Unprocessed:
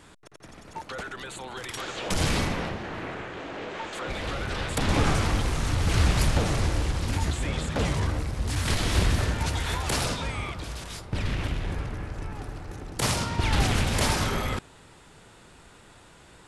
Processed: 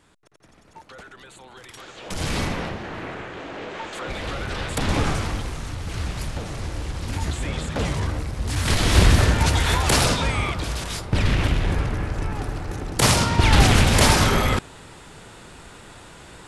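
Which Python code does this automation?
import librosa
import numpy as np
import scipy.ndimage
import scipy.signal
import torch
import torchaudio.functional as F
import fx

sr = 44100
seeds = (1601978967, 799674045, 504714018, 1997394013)

y = fx.gain(x, sr, db=fx.line((1.96, -7.0), (2.44, 2.0), (4.89, 2.0), (5.84, -6.5), (6.47, -6.5), (7.34, 1.5), (8.38, 1.5), (9.05, 8.5)))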